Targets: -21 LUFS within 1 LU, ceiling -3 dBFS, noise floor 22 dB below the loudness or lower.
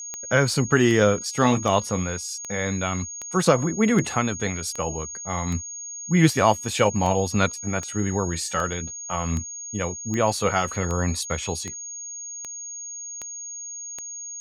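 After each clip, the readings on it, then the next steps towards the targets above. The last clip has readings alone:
clicks found 19; steady tone 6.6 kHz; tone level -33 dBFS; loudness -24.5 LUFS; peak level -4.0 dBFS; loudness target -21.0 LUFS
-> de-click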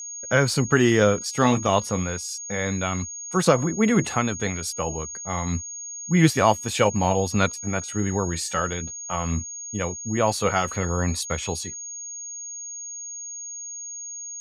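clicks found 0; steady tone 6.6 kHz; tone level -33 dBFS
-> band-stop 6.6 kHz, Q 30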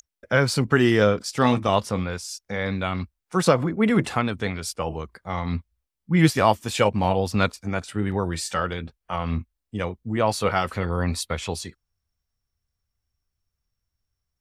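steady tone not found; loudness -24.0 LUFS; peak level -4.0 dBFS; loudness target -21.0 LUFS
-> trim +3 dB; peak limiter -3 dBFS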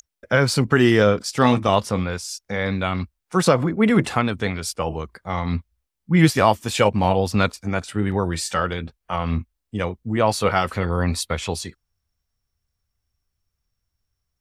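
loudness -21.5 LUFS; peak level -3.0 dBFS; noise floor -80 dBFS

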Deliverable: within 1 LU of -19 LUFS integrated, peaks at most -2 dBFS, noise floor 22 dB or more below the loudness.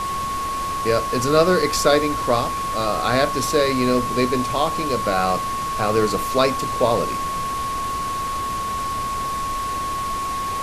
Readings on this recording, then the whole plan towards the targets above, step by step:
steady tone 1.1 kHz; tone level -23 dBFS; noise floor -25 dBFS; noise floor target -43 dBFS; loudness -21.0 LUFS; peak level -3.0 dBFS; loudness target -19.0 LUFS
-> band-stop 1.1 kHz, Q 30; noise print and reduce 18 dB; trim +2 dB; peak limiter -2 dBFS

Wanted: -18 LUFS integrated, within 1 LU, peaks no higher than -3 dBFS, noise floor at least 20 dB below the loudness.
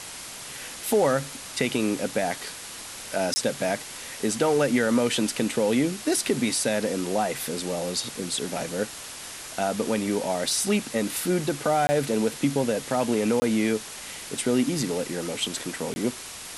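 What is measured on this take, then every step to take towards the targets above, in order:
dropouts 4; longest dropout 20 ms; noise floor -39 dBFS; noise floor target -46 dBFS; loudness -26.0 LUFS; peak level -8.5 dBFS; loudness target -18.0 LUFS
-> interpolate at 3.34/11.87/13.40/15.94 s, 20 ms; noise print and reduce 7 dB; trim +8 dB; peak limiter -3 dBFS

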